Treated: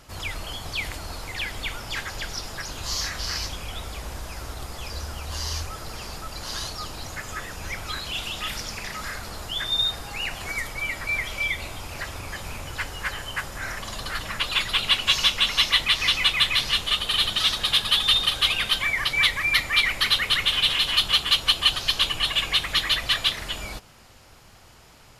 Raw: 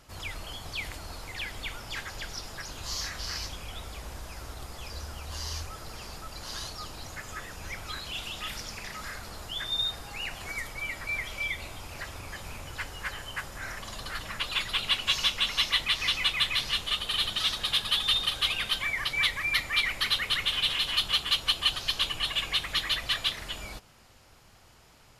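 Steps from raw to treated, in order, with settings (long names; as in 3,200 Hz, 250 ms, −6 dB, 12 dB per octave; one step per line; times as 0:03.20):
level +6 dB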